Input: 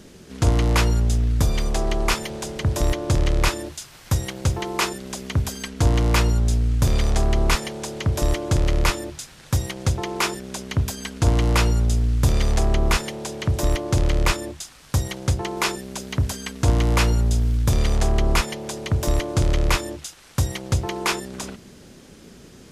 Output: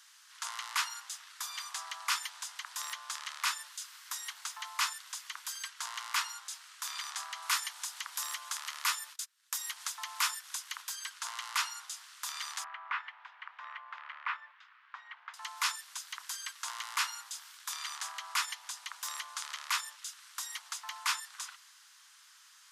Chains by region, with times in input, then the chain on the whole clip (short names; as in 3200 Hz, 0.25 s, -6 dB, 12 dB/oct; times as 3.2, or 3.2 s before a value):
7.42–10.82 gate -37 dBFS, range -28 dB + high shelf 12000 Hz +11 dB + mismatched tape noise reduction encoder only
12.64–15.34 LPF 2300 Hz 24 dB/oct + low shelf 440 Hz -6.5 dB
whole clip: steep high-pass 1000 Hz 48 dB/oct; bell 2400 Hz -4 dB 0.39 oct; transient shaper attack -3 dB, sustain +1 dB; gain -5 dB